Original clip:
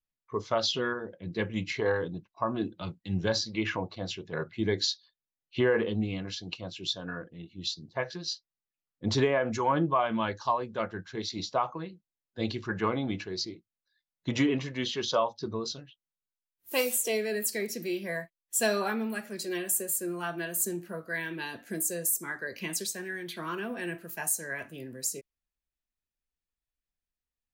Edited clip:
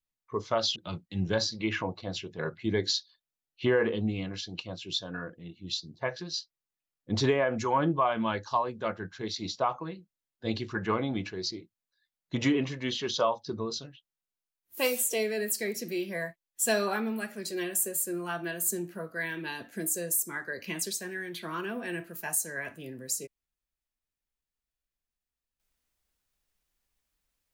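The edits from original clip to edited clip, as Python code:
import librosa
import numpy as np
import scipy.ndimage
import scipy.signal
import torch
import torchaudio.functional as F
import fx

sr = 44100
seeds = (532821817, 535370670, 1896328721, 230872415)

y = fx.edit(x, sr, fx.cut(start_s=0.76, length_s=1.94), tone=tone)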